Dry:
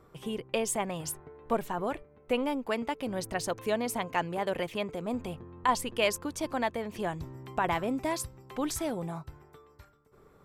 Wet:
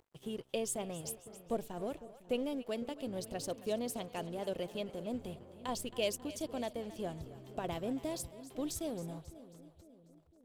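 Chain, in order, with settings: high-order bell 1.4 kHz -12 dB; upward compressor, threshold -52 dBFS; crossover distortion -52 dBFS; two-band feedback delay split 550 Hz, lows 504 ms, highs 271 ms, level -15 dB; trim -5 dB

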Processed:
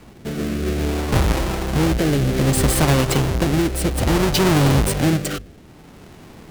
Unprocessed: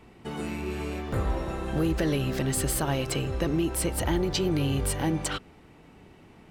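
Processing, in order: square wave that keeps the level; hum notches 50/100 Hz; rotary cabinet horn 0.6 Hz; trim +7 dB

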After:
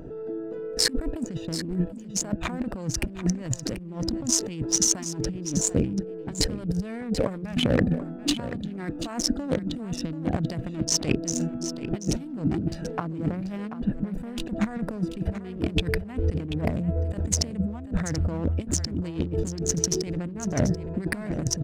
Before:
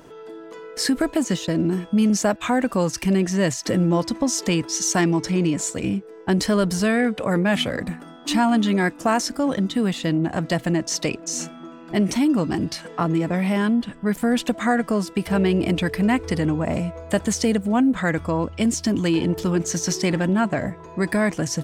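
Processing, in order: local Wiener filter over 41 samples; bass shelf 100 Hz +10.5 dB; compressor with a negative ratio -26 dBFS, ratio -0.5; on a send: delay 736 ms -11.5 dB

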